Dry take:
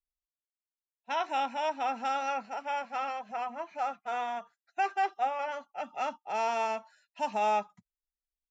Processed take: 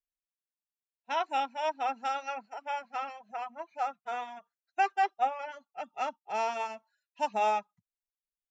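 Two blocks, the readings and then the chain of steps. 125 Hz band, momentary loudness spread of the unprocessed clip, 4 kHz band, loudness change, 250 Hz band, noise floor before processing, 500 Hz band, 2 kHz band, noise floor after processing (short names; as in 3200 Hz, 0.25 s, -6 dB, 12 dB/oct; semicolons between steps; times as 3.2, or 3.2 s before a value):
n/a, 8 LU, -0.5 dB, -0.5 dB, -4.0 dB, under -85 dBFS, -1.5 dB, -0.5 dB, under -85 dBFS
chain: reverb removal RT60 1.2 s; upward expander 1.5:1, over -46 dBFS; gain +3 dB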